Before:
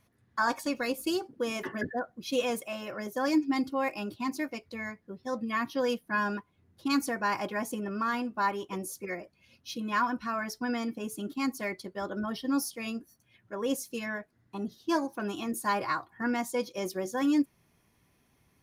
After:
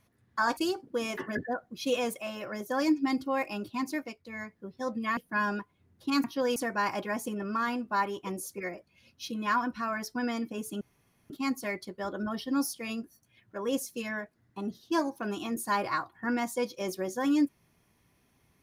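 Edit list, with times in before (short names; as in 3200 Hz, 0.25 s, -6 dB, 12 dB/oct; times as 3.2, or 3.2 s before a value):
0.57–1.03 cut
4.36–5.02 dip -8.5 dB, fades 0.33 s equal-power
5.63–5.95 move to 7.02
11.27 insert room tone 0.49 s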